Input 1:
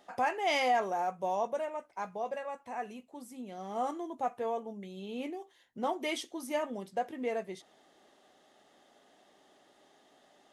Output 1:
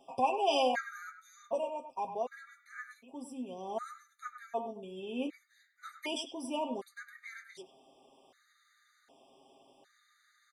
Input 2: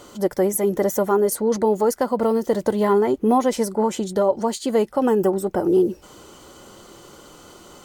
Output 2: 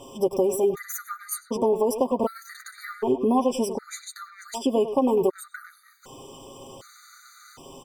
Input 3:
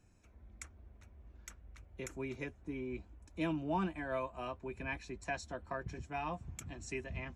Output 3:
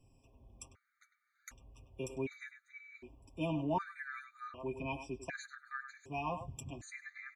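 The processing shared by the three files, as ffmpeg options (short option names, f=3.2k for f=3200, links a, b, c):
-filter_complex "[0:a]aecho=1:1:7.5:0.65,asoftclip=type=hard:threshold=-6.5dB,asplit=2[a][b];[b]adelay=100,highpass=300,lowpass=3.4k,asoftclip=type=hard:threshold=-16dB,volume=-9dB[c];[a][c]amix=inputs=2:normalize=0,acompressor=threshold=-19dB:ratio=3,afftfilt=real='re*gt(sin(2*PI*0.66*pts/sr)*(1-2*mod(floor(b*sr/1024/1200),2)),0)':imag='im*gt(sin(2*PI*0.66*pts/sr)*(1-2*mod(floor(b*sr/1024/1200),2)),0)':win_size=1024:overlap=0.75"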